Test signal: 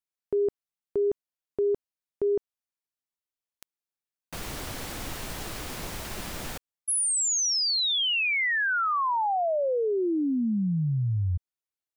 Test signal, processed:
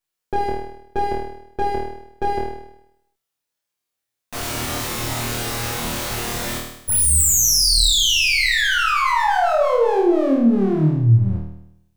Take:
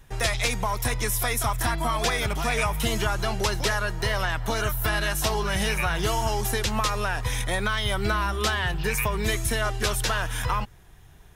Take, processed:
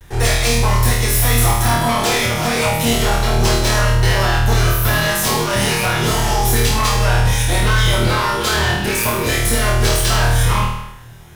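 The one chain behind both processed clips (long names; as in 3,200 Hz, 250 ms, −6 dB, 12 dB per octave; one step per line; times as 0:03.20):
lower of the sound and its delayed copy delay 8.4 ms
soft clipping −20 dBFS
flutter between parallel walls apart 4.4 metres, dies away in 0.79 s
dynamic equaliser 1,600 Hz, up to −3 dB, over −33 dBFS, Q 0.8
level +8.5 dB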